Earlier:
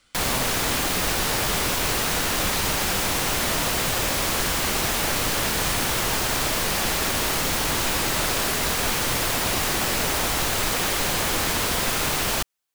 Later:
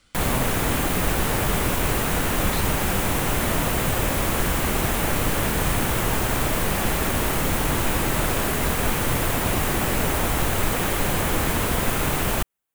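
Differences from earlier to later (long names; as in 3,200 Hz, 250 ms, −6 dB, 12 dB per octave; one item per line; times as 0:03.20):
background: add parametric band 4,900 Hz −9.5 dB 1.1 octaves
master: add low-shelf EQ 350 Hz +7 dB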